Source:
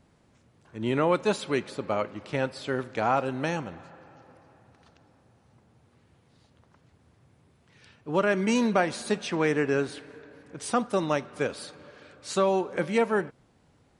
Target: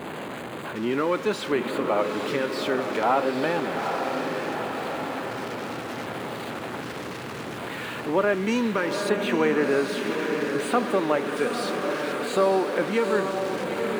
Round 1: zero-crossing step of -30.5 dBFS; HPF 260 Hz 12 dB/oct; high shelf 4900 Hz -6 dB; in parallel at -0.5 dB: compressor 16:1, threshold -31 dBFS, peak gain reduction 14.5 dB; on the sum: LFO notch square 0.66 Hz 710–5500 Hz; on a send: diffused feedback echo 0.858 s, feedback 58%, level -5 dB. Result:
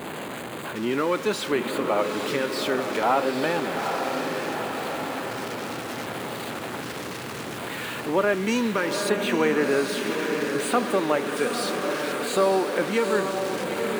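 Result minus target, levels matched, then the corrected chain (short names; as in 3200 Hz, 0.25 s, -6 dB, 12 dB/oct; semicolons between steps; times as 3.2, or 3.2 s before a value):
8000 Hz band +5.5 dB
zero-crossing step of -30.5 dBFS; HPF 260 Hz 12 dB/oct; high shelf 4900 Hz -14.5 dB; in parallel at -0.5 dB: compressor 16:1, threshold -31 dBFS, peak gain reduction 14 dB; on the sum: LFO notch square 0.66 Hz 710–5500 Hz; on a send: diffused feedback echo 0.858 s, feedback 58%, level -5 dB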